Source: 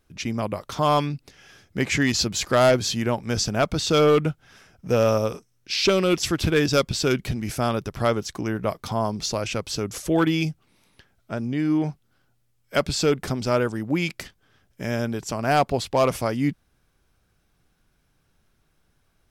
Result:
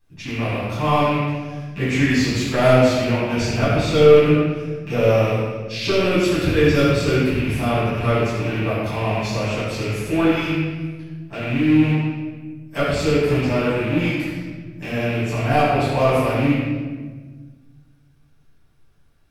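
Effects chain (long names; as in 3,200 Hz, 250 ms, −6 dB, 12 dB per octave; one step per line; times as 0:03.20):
loose part that buzzes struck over −32 dBFS, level −19 dBFS
convolution reverb RT60 1.4 s, pre-delay 7 ms, DRR −11 dB
dynamic equaliser 5,800 Hz, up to −6 dB, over −31 dBFS, Q 1.1
level −11.5 dB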